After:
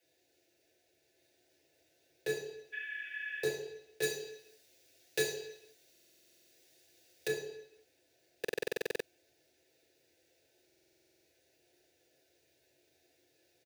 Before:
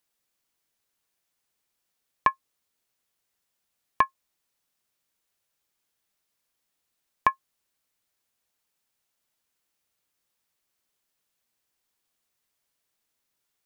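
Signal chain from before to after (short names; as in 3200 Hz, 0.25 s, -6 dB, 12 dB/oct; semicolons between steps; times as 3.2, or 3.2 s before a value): median filter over 41 samples; fixed phaser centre 480 Hz, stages 4; echo 1.171 s -3 dB; negative-ratio compressor -42 dBFS, ratio -1; tilt +3 dB/oct; reverb RT60 0.80 s, pre-delay 3 ms, DRR -5 dB; 2.76–3.44 spectral repair 1400–3600 Hz after; 4.02–7.28 high shelf 2600 Hz +9.5 dB; stuck buffer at 5.91/8.4/10.65, samples 2048, times 12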